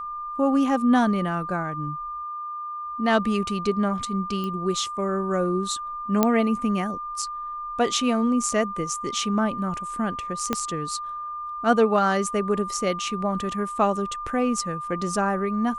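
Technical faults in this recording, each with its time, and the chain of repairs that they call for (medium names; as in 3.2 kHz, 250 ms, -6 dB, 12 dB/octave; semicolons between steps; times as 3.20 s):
whine 1.2 kHz -30 dBFS
4.44 s: pop -19 dBFS
6.23 s: pop -5 dBFS
10.53 s: pop -9 dBFS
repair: de-click; band-stop 1.2 kHz, Q 30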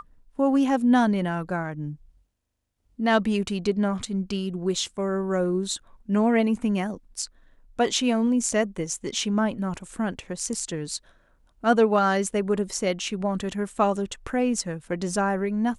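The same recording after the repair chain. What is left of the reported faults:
10.53 s: pop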